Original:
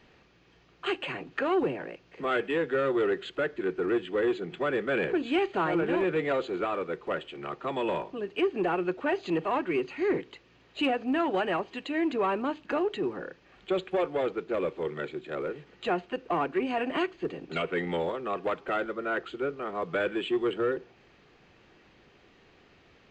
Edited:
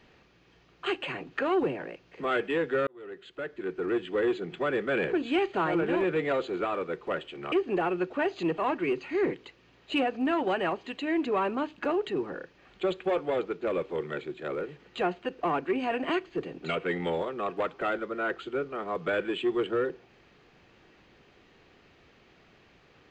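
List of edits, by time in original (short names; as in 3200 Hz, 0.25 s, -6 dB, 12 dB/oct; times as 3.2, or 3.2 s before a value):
2.87–4.11 fade in
7.52–8.39 cut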